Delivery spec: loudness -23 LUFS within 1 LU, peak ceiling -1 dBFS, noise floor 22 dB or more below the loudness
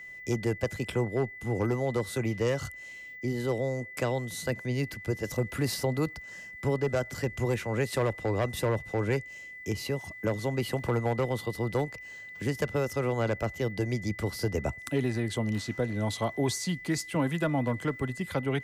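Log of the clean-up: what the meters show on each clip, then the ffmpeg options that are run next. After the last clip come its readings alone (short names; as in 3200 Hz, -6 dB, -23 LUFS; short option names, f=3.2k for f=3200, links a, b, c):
steady tone 2000 Hz; tone level -42 dBFS; loudness -31.0 LUFS; peak -15.5 dBFS; loudness target -23.0 LUFS
-> -af "bandreject=f=2k:w=30"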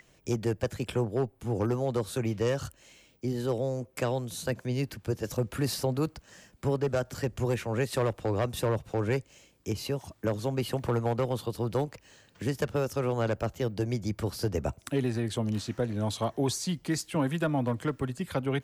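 steady tone none; loudness -31.0 LUFS; peak -15.5 dBFS; loudness target -23.0 LUFS
-> -af "volume=8dB"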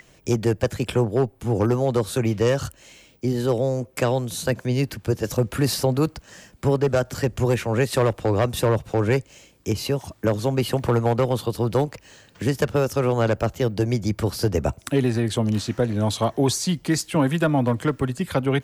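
loudness -23.0 LUFS; peak -7.5 dBFS; noise floor -55 dBFS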